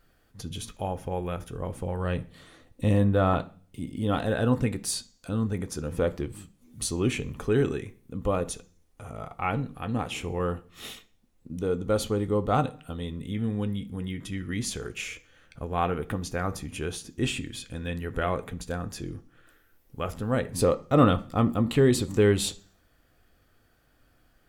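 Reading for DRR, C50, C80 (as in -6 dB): 8.5 dB, 19.5 dB, 23.5 dB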